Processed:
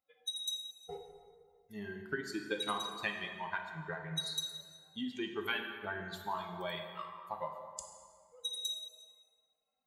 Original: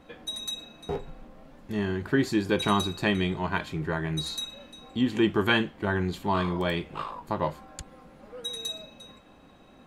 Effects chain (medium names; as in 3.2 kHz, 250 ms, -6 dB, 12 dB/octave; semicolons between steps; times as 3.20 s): expander on every frequency bin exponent 2; high-pass 930 Hz 6 dB/octave; 1.99–4.41 s: transient shaper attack +6 dB, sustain -6 dB; compression 2.5:1, threshold -42 dBFS, peak gain reduction 13 dB; plate-style reverb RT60 2 s, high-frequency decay 0.6×, DRR 3 dB; trim +3 dB